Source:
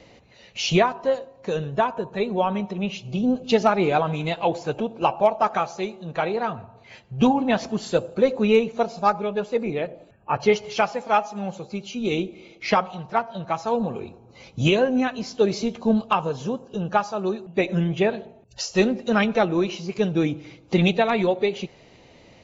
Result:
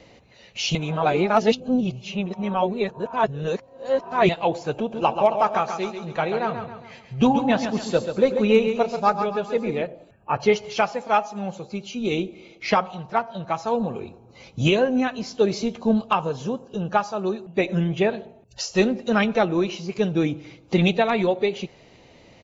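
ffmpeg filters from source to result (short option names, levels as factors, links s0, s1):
-filter_complex "[0:a]asplit=3[s0][s1][s2];[s0]afade=t=out:st=4.91:d=0.02[s3];[s1]aecho=1:1:136|272|408|544|680:0.398|0.175|0.0771|0.0339|0.0149,afade=t=in:st=4.91:d=0.02,afade=t=out:st=9.82:d=0.02[s4];[s2]afade=t=in:st=9.82:d=0.02[s5];[s3][s4][s5]amix=inputs=3:normalize=0,asplit=3[s6][s7][s8];[s6]atrim=end=0.752[s9];[s7]atrim=start=0.748:end=4.292,asetpts=PTS-STARTPTS,areverse[s10];[s8]atrim=start=4.288[s11];[s9][s10]acrossfade=d=0.004:c1=hsin:c2=hsin[s12];[s12][s11]acrossfade=d=0.004:c1=hsin:c2=hsin"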